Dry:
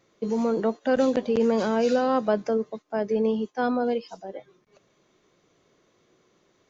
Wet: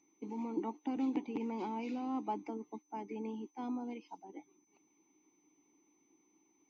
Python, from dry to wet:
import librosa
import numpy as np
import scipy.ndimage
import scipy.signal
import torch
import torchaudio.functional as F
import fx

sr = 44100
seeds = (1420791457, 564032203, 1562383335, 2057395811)

y = x + 10.0 ** (-43.0 / 20.0) * np.sin(2.0 * np.pi * 6100.0 * np.arange(len(x)) / sr)
y = fx.hpss(y, sr, part='harmonic', gain_db=-8)
y = fx.vowel_filter(y, sr, vowel='u')
y = F.gain(torch.from_numpy(y), 6.0).numpy()